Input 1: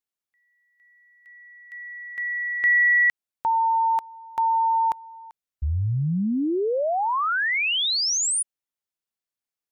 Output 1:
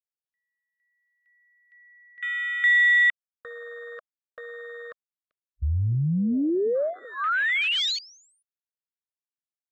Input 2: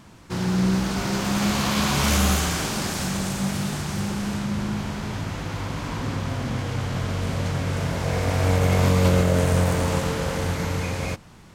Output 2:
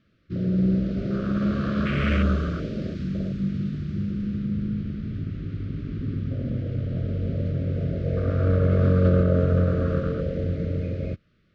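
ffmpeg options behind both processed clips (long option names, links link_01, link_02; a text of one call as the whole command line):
ffmpeg -i in.wav -af "lowpass=frequency=4300:width=0.5412,lowpass=frequency=4300:width=1.3066,afwtdn=0.0562,asuperstop=centerf=870:order=8:qfactor=1.6" out.wav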